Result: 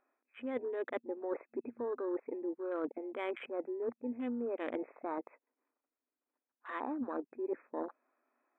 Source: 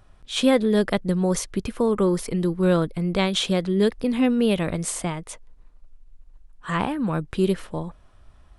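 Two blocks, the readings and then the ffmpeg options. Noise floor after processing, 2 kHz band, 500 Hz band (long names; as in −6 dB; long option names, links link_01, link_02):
below −85 dBFS, −16.0 dB, −14.0 dB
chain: -af "afftfilt=real='re*between(b*sr/4096,230,2600)':imag='im*between(b*sr/4096,230,2600)':win_size=4096:overlap=0.75,afwtdn=0.0224,areverse,acompressor=threshold=-35dB:ratio=20,areverse,volume=1dB"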